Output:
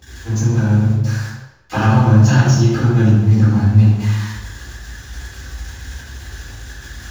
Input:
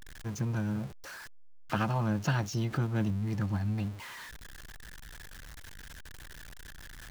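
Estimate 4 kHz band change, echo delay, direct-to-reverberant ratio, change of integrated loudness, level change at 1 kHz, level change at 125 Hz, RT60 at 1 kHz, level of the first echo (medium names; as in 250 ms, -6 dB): +14.0 dB, no echo, -12.5 dB, +18.5 dB, +14.0 dB, +20.5 dB, 0.95 s, no echo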